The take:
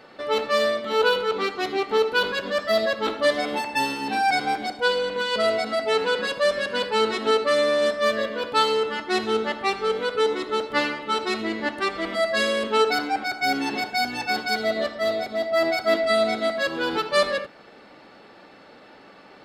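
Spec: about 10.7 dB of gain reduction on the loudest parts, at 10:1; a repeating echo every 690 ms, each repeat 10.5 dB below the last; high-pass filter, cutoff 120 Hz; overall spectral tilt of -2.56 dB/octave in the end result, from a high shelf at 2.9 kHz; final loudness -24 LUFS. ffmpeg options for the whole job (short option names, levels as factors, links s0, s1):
-af "highpass=120,highshelf=f=2900:g=3.5,acompressor=threshold=0.0501:ratio=10,aecho=1:1:690|1380|2070:0.299|0.0896|0.0269,volume=1.88"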